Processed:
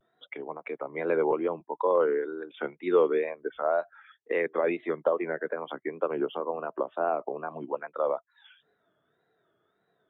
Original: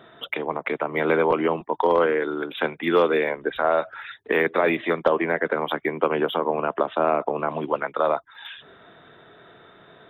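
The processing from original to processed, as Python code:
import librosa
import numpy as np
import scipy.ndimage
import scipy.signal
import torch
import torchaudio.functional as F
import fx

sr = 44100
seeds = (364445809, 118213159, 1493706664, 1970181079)

y = fx.wow_flutter(x, sr, seeds[0], rate_hz=2.1, depth_cents=120.0)
y = fx.spectral_expand(y, sr, expansion=1.5)
y = y * librosa.db_to_amplitude(-3.5)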